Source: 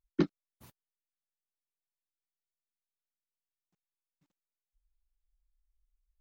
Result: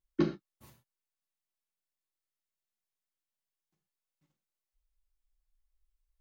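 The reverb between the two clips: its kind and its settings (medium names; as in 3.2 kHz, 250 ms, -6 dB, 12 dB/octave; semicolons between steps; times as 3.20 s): gated-style reverb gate 150 ms falling, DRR 1 dB; trim -2.5 dB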